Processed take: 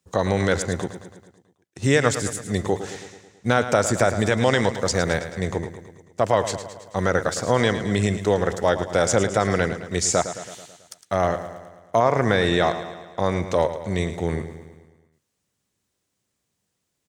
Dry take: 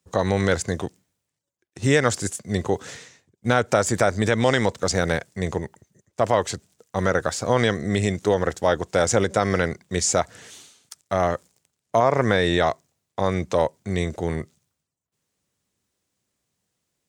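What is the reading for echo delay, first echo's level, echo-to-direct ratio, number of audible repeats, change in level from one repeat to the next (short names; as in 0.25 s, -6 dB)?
0.109 s, -11.5 dB, -9.5 dB, 5, -4.5 dB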